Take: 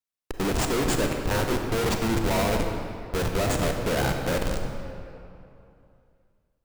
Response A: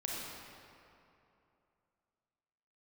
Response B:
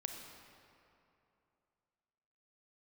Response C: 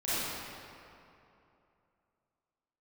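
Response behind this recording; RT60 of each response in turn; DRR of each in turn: B; 2.8, 2.8, 2.8 seconds; −4.0, 3.5, −14.0 decibels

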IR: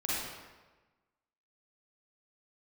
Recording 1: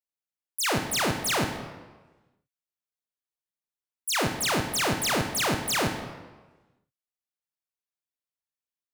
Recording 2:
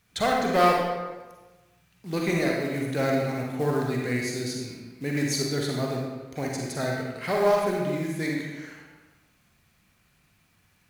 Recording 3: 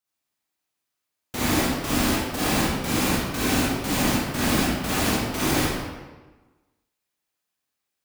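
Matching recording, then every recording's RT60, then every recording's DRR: 3; 1.2, 1.2, 1.2 seconds; 5.0, −1.5, −8.0 decibels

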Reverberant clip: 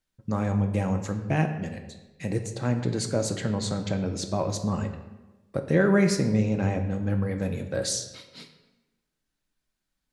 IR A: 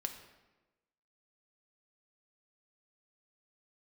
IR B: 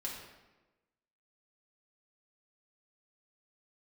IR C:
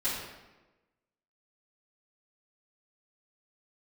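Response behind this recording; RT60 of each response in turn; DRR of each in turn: A; 1.1, 1.1, 1.1 seconds; 5.0, −4.0, −13.5 decibels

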